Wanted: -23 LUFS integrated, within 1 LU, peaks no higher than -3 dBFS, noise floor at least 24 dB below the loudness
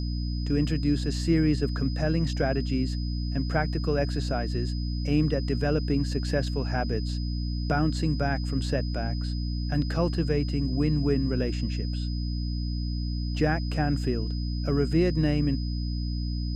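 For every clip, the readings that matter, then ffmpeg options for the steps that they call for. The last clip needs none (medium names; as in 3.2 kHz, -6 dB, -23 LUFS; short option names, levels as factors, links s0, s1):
hum 60 Hz; highest harmonic 300 Hz; hum level -27 dBFS; steady tone 5 kHz; tone level -42 dBFS; loudness -27.5 LUFS; peak level -11.5 dBFS; loudness target -23.0 LUFS
-> -af "bandreject=f=60:t=h:w=4,bandreject=f=120:t=h:w=4,bandreject=f=180:t=h:w=4,bandreject=f=240:t=h:w=4,bandreject=f=300:t=h:w=4"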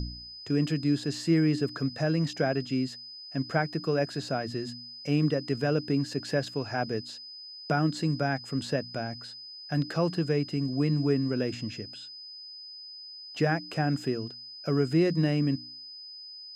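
hum not found; steady tone 5 kHz; tone level -42 dBFS
-> -af "bandreject=f=5000:w=30"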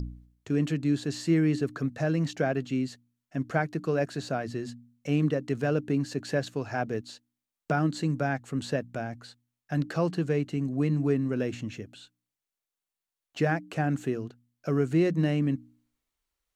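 steady tone not found; loudness -29.0 LUFS; peak level -12.0 dBFS; loudness target -23.0 LUFS
-> -af "volume=2"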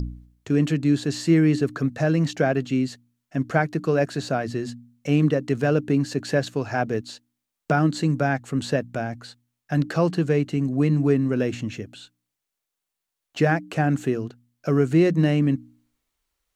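loudness -23.0 LUFS; peak level -6.0 dBFS; noise floor -84 dBFS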